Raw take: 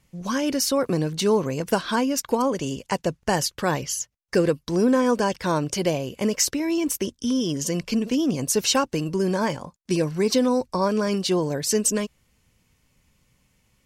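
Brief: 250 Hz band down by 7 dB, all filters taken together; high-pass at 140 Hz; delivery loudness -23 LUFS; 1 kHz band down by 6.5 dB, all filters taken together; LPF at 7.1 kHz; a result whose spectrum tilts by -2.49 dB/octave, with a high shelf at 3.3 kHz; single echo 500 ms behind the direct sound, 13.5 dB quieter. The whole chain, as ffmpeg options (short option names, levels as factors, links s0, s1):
-af "highpass=140,lowpass=7100,equalizer=f=250:t=o:g=-8,equalizer=f=1000:t=o:g=-8,highshelf=f=3300:g=6.5,aecho=1:1:500:0.211,volume=1.33"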